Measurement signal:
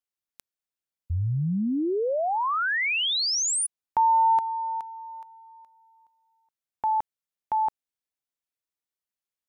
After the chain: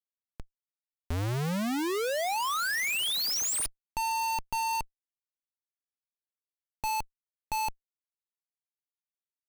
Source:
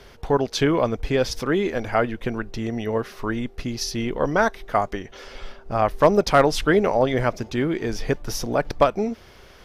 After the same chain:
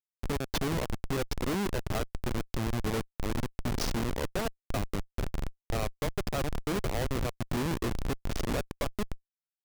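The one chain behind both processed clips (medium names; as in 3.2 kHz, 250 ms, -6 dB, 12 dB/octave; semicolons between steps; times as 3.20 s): Chebyshev low-pass 10 kHz, order 2; compression 16:1, threshold -32 dBFS; Schmitt trigger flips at -33 dBFS; trim +8 dB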